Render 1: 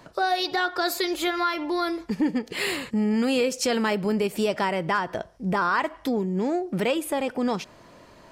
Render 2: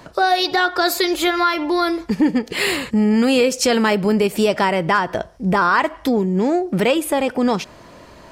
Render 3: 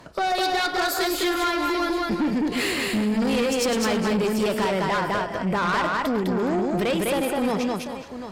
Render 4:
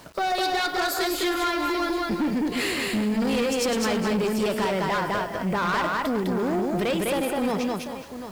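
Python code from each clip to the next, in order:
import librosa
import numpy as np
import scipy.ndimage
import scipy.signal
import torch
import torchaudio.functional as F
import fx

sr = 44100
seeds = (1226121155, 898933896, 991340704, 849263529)

y1 = fx.peak_eq(x, sr, hz=62.0, db=7.0, octaves=0.43)
y1 = F.gain(torch.from_numpy(y1), 7.5).numpy()
y2 = fx.reverse_delay(y1, sr, ms=125, wet_db=-14)
y2 = fx.echo_multitap(y2, sr, ms=(100, 205, 417, 740), db=(-17.0, -3.0, -15.0, -14.0))
y2 = fx.tube_stage(y2, sr, drive_db=15.0, bias=0.3)
y2 = F.gain(torch.from_numpy(y2), -3.5).numpy()
y3 = fx.quant_dither(y2, sr, seeds[0], bits=8, dither='none')
y3 = F.gain(torch.from_numpy(y3), -1.5).numpy()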